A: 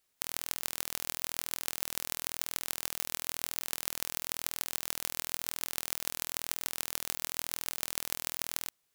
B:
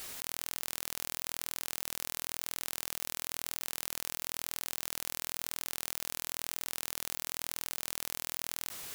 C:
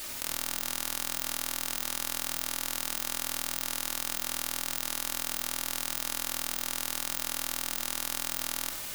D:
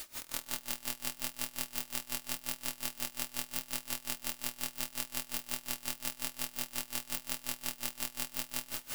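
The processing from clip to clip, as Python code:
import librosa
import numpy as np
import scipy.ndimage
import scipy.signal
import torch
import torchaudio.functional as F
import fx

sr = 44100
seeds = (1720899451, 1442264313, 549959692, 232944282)

y1 = fx.env_flatten(x, sr, amount_pct=100)
y1 = y1 * 10.0 ** (-7.0 / 20.0)
y2 = y1 + 10.0 ** (-13.0 / 20.0) * np.pad(y1, (int(94 * sr / 1000.0), 0))[:len(y1)]
y2 = fx.room_shoebox(y2, sr, seeds[0], volume_m3=3700.0, walls='furnished', distance_m=2.6)
y2 = y2 * 10.0 ** (3.5 / 20.0)
y3 = fx.echo_feedback(y2, sr, ms=130, feedback_pct=57, wet_db=-5)
y3 = y3 * 10.0 ** (-23 * (0.5 - 0.5 * np.cos(2.0 * np.pi * 5.6 * np.arange(len(y3)) / sr)) / 20.0)
y3 = y3 * 10.0 ** (-1.5 / 20.0)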